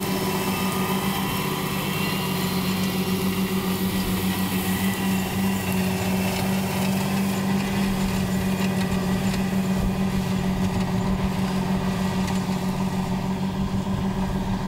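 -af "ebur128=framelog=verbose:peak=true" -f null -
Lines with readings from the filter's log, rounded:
Integrated loudness:
  I:         -24.2 LUFS
  Threshold: -34.2 LUFS
Loudness range:
  LRA:         1.1 LU
  Threshold: -44.0 LUFS
  LRA low:   -24.7 LUFS
  LRA high:  -23.6 LUFS
True peak:
  Peak:       -7.9 dBFS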